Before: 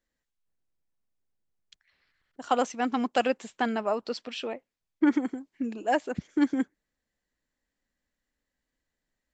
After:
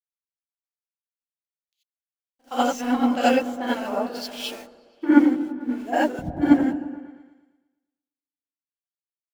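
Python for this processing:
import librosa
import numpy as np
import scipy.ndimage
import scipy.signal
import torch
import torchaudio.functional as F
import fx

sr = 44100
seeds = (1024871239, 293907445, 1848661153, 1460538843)

y = np.where(np.abs(x) >= 10.0 ** (-40.5 / 20.0), x, 0.0)
y = fx.echo_opening(y, sr, ms=114, hz=200, octaves=1, feedback_pct=70, wet_db=-3)
y = fx.rev_gated(y, sr, seeds[0], gate_ms=110, shape='rising', drr_db=-7.5)
y = fx.band_widen(y, sr, depth_pct=100)
y = y * librosa.db_to_amplitude(-5.0)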